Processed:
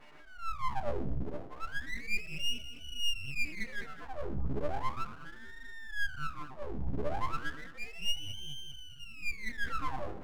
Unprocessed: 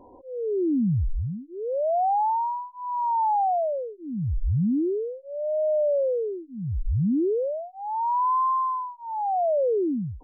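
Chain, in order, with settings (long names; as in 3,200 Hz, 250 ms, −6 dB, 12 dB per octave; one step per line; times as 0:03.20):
pitch shift by two crossfaded delay taps +7 semitones
dynamic equaliser 980 Hz, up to −5 dB, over −36 dBFS, Q 1.8
in parallel at −2.5 dB: brickwall limiter −28.5 dBFS, peak gain reduction 9.5 dB
on the sum: stiff-string resonator 60 Hz, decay 0.43 s, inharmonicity 0.03
on a send: echo with a time of its own for lows and highs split 650 Hz, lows 118 ms, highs 207 ms, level −14.5 dB
on the sum: full-wave rectification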